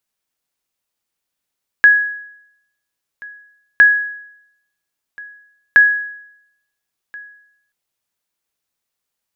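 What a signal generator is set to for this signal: sonar ping 1670 Hz, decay 0.77 s, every 1.96 s, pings 3, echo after 1.38 s, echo -25 dB -2 dBFS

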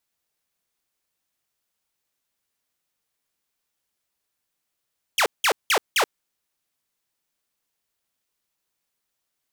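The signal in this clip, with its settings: burst of laser zaps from 3500 Hz, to 360 Hz, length 0.08 s saw, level -14 dB, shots 4, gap 0.18 s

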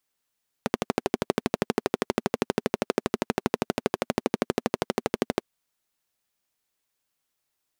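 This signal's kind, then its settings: single-cylinder engine model, steady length 4.80 s, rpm 1500, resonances 240/390 Hz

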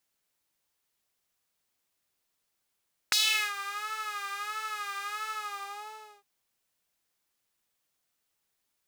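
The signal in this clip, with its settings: synth patch with vibrato G#4, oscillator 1 saw, oscillator 2 saw, interval +19 st, detune 19 cents, sub -25 dB, filter highpass, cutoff 590 Hz, Q 2.5, filter envelope 3 oct, filter decay 0.41 s, filter sustain 40%, attack 1.8 ms, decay 0.40 s, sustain -18 dB, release 0.96 s, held 2.15 s, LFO 1.5 Hz, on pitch 76 cents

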